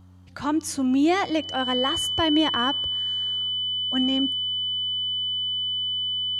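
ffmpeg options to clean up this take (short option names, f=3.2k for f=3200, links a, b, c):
-af "bandreject=f=91.6:t=h:w=4,bandreject=f=183.2:t=h:w=4,bandreject=f=274.8:t=h:w=4,bandreject=f=3k:w=30"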